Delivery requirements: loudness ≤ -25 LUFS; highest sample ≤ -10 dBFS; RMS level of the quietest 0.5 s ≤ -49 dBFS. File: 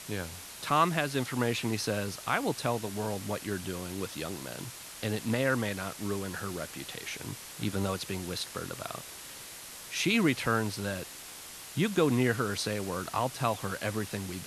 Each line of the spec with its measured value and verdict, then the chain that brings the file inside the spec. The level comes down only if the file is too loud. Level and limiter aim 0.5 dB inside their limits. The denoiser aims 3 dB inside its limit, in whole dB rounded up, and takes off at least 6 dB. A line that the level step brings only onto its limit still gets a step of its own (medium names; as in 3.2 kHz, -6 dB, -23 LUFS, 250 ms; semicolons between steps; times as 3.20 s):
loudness -32.0 LUFS: pass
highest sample -12.0 dBFS: pass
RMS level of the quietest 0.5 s -46 dBFS: fail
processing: noise reduction 6 dB, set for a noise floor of -46 dBFS